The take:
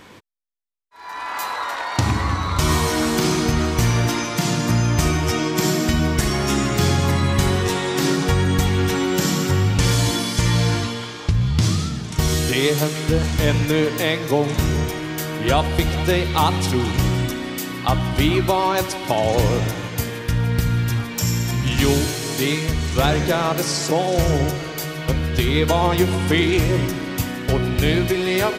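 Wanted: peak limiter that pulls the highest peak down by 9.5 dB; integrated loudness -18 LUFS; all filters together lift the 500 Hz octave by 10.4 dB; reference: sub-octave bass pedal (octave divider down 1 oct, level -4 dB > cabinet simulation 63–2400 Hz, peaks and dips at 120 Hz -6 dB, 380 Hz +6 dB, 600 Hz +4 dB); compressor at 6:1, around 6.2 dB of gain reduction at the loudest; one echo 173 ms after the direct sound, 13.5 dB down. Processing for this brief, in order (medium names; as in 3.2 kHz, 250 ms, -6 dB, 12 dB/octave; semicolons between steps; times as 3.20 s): peaking EQ 500 Hz +8.5 dB; compression 6:1, threshold -15 dBFS; peak limiter -12.5 dBFS; delay 173 ms -13.5 dB; octave divider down 1 oct, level -4 dB; cabinet simulation 63–2400 Hz, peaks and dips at 120 Hz -6 dB, 380 Hz +6 dB, 600 Hz +4 dB; trim +2 dB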